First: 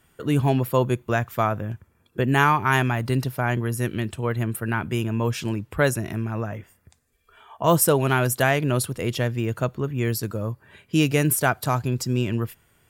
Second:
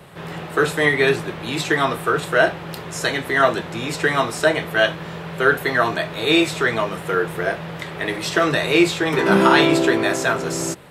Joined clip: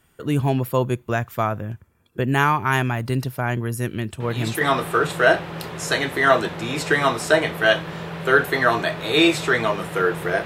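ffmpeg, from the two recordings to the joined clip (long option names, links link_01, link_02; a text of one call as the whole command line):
ffmpeg -i cue0.wav -i cue1.wav -filter_complex "[1:a]asplit=2[link_01][link_02];[0:a]apad=whole_dur=10.45,atrim=end=10.45,atrim=end=4.612[link_03];[link_02]atrim=start=1.738:end=7.58[link_04];[link_01]atrim=start=1.33:end=1.74,asetpts=PTS-STARTPTS,volume=-6.5dB,afade=type=in:duration=0.004:curve=hsin,afade=type=out:start_time=0.406:duration=0.004:curve=hsin,adelay=4200[link_05];[link_03][link_04]acrossfade=duration=0.004:curve1=hsin:curve2=hsin[link_06];[link_06][link_05]amix=inputs=2:normalize=0" out.wav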